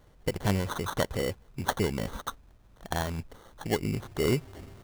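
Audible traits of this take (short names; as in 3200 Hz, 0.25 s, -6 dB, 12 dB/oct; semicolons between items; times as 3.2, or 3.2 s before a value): aliases and images of a low sample rate 2500 Hz, jitter 0%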